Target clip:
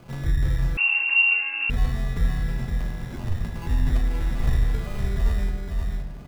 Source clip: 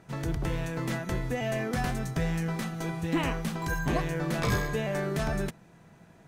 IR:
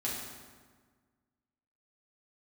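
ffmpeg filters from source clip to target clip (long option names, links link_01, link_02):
-filter_complex "[0:a]lowshelf=frequency=66:gain=10.5,acrossover=split=110[link_01][link_02];[link_02]acompressor=threshold=-44dB:ratio=6[link_03];[link_01][link_03]amix=inputs=2:normalize=0,acrusher=samples=24:mix=1:aa=0.000001,asplit=3[link_04][link_05][link_06];[link_04]afade=type=out:start_time=2.66:duration=0.02[link_07];[link_05]aeval=exprs='val(0)*sin(2*PI*45*n/s)':channel_layout=same,afade=type=in:start_time=2.66:duration=0.02,afade=type=out:start_time=3.39:duration=0.02[link_08];[link_06]afade=type=in:start_time=3.39:duration=0.02[link_09];[link_07][link_08][link_09]amix=inputs=3:normalize=0,aecho=1:1:515:0.596,asplit=2[link_10][link_11];[1:a]atrim=start_sample=2205,lowpass=5300[link_12];[link_11][link_12]afir=irnorm=-1:irlink=0,volume=-7dB[link_13];[link_10][link_13]amix=inputs=2:normalize=0,asettb=1/sr,asplit=3[link_14][link_15][link_16];[link_14]atrim=end=0.774[link_17];[link_15]atrim=start=0.77:end=1.7,asetpts=PTS-STARTPTS,afade=type=in:duration=0.004:curve=qsin,afade=type=out:start_time=0.926:duration=0.004:curve=qsin,lowpass=frequency=2400:width_type=q:width=0.5098,lowpass=frequency=2400:width_type=q:width=0.6013,lowpass=frequency=2400:width_type=q:width=0.9,lowpass=frequency=2400:width_type=q:width=2.563,afreqshift=-2800[link_18];[link_16]atrim=start=1.696[link_19];[link_17][link_18]acrossfade=duration=0.004:curve1=hsin:curve2=qsin[link_20];[link_20][link_19]acrossfade=duration=0.004:curve1=qsin:curve2=hsin,volume=4dB"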